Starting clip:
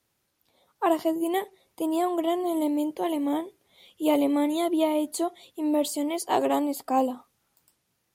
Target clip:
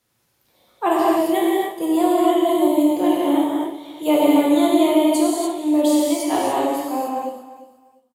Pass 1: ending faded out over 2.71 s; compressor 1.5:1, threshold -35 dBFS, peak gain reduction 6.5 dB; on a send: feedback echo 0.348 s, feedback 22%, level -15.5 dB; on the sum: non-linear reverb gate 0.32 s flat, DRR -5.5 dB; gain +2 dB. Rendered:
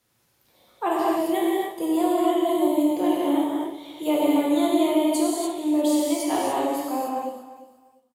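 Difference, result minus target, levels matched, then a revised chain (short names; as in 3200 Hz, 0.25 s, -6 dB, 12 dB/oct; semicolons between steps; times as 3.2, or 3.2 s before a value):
compressor: peak gain reduction +6.5 dB
ending faded out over 2.71 s; on a send: feedback echo 0.348 s, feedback 22%, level -15.5 dB; on the sum: non-linear reverb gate 0.32 s flat, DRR -5.5 dB; gain +2 dB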